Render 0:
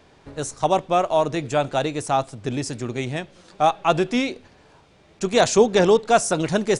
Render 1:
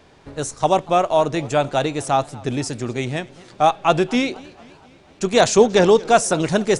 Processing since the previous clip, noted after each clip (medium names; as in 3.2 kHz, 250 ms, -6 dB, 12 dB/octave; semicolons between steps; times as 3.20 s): modulated delay 237 ms, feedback 56%, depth 185 cents, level -23 dB; trim +2.5 dB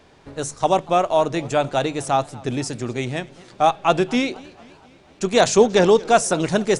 hum notches 50/100/150 Hz; trim -1 dB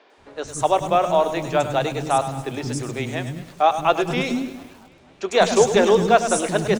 three bands offset in time mids, highs, lows 100/180 ms, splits 300/5100 Hz; bit-crushed delay 103 ms, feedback 55%, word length 7-bit, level -11 dB